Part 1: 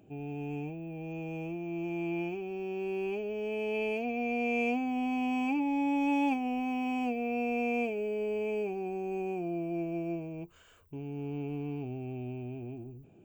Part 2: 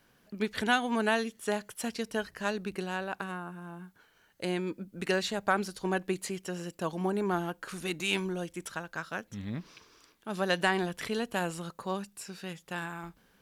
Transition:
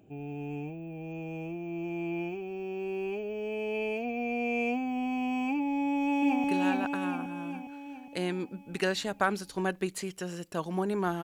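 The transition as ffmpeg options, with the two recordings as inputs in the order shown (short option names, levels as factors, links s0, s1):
-filter_complex "[0:a]apad=whole_dur=11.23,atrim=end=11.23,atrim=end=6.442[s0];[1:a]atrim=start=2.708:end=7.5[s1];[s0][s1]acrossfade=d=0.004:c1=hsin:c2=hsin,asplit=2[s2][s3];[s3]afade=t=in:st=5.81:d=0.01,afade=t=out:st=6.44:d=0.01,aecho=0:1:410|820|1230|1640|2050|2460|2870|3280:0.944061|0.519233|0.285578|0.157068|0.0863875|0.0475131|0.0261322|0.0143727[s4];[s2][s4]amix=inputs=2:normalize=0"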